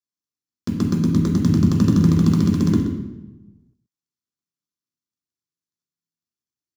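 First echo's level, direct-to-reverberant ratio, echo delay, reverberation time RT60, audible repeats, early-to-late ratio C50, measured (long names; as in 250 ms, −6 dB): −11.0 dB, −1.5 dB, 127 ms, 1.1 s, 1, 3.0 dB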